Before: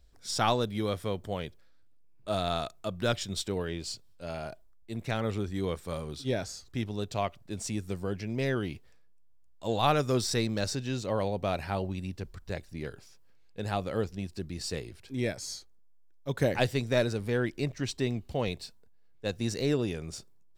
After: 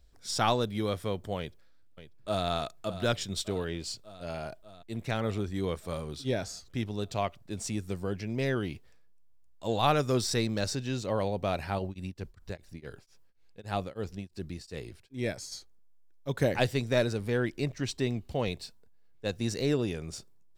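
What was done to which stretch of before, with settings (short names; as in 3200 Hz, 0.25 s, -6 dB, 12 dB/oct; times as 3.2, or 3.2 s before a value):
1.38–2.46 echo throw 0.59 s, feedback 70%, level -12.5 dB
11.78–15.51 beating tremolo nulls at 5.4 Hz -> 2 Hz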